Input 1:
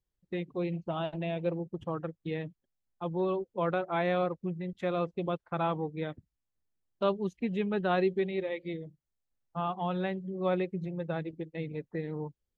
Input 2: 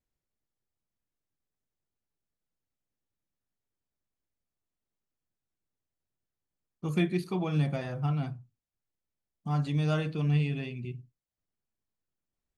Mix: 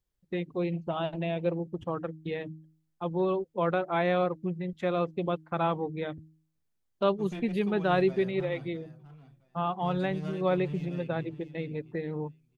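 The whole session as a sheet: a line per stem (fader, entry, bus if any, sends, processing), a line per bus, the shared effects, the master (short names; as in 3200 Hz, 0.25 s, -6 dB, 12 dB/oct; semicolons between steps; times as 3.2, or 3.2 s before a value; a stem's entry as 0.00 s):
+2.5 dB, 0.00 s, no send, no echo send, de-hum 157.7 Hz, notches 2
-9.5 dB, 0.35 s, no send, echo send -11.5 dB, one-sided clip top -28.5 dBFS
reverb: off
echo: feedback echo 0.661 s, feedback 19%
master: dry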